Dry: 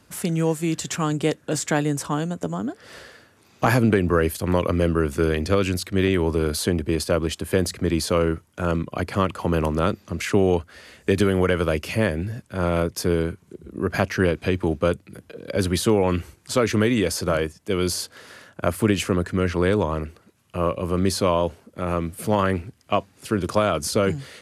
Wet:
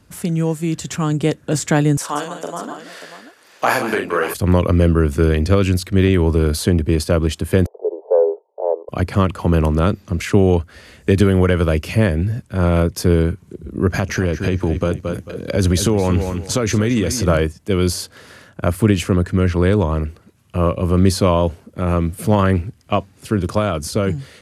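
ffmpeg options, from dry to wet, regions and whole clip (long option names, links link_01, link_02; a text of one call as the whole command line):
ffmpeg -i in.wav -filter_complex "[0:a]asettb=1/sr,asplit=3[link_01][link_02][link_03];[link_01]atrim=end=1.974[link_04];[link_02]atrim=start=1.97:end=4.34,asetpts=PTS-STARTPTS,afade=type=in:duration=0.004:curve=qsin,afade=type=out:start_time=2.366:duration=0.004:curve=qsin,highpass=580,aecho=1:1:41|180|588:0.631|0.316|0.266,atrim=end_sample=104517[link_05];[link_03]atrim=start=4.336[link_06];[link_04][link_05]acrossfade=duration=0.004:curve1=hsin:curve2=qsin[link_07];[link_07][link_06]acrossfade=duration=0.004:curve1=qsin:curve2=hsin,asettb=1/sr,asplit=3[link_08][link_09][link_10];[link_08]atrim=end=7.664[link_11];[link_09]atrim=start=7.66:end=8.89,asetpts=PTS-STARTPTS,afade=type=in:duration=0.004:curve=qsin,afade=type=out:start_time=1.226:duration=0.004:curve=qsin,asuperpass=centerf=610:order=12:qfactor=1.2,acontrast=38[link_12];[link_10]atrim=start=8.886[link_13];[link_11][link_12]acrossfade=duration=0.004:curve1=hsin:curve2=qsin[link_14];[link_14][link_13]acrossfade=duration=0.004:curve1=qsin:curve2=hsin,asettb=1/sr,asplit=3[link_15][link_16][link_17];[link_15]atrim=end=13.874[link_18];[link_16]atrim=start=13.87:end=17.26,asetpts=PTS-STARTPTS,afade=type=in:duration=0.004:curve=qsin,afade=type=out:start_time=3.386:duration=0.004:curve=qsin,equalizer=frequency=6300:width_type=o:width=0.26:gain=8,aecho=1:1:222|444|666:0.251|0.0653|0.017,atrim=end_sample=149499,acompressor=threshold=-23dB:ratio=3:attack=3.2:release=140:knee=1:detection=peak[link_19];[link_17]atrim=start=17.256[link_20];[link_18][link_19]acrossfade=duration=0.004:curve1=hsin:curve2=qsin[link_21];[link_21][link_20]acrossfade=duration=0.004:curve1=qsin:curve2=hsin,lowshelf=frequency=190:gain=10,dynaudnorm=framelen=160:gausssize=17:maxgain=11.5dB,volume=-1dB" out.wav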